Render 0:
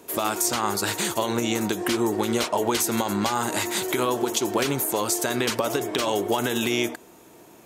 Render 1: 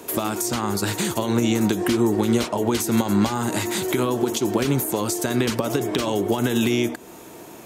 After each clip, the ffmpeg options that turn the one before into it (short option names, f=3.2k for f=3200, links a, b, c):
-filter_complex "[0:a]acrossover=split=300[a][b];[b]acompressor=threshold=-36dB:ratio=3[c];[a][c]amix=inputs=2:normalize=0,volume=8.5dB"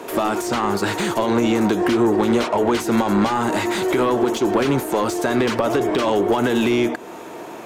-filter_complex "[0:a]asplit=2[a][b];[b]highpass=f=720:p=1,volume=19dB,asoftclip=type=tanh:threshold=-7dB[c];[a][c]amix=inputs=2:normalize=0,lowpass=f=1.2k:p=1,volume=-6dB"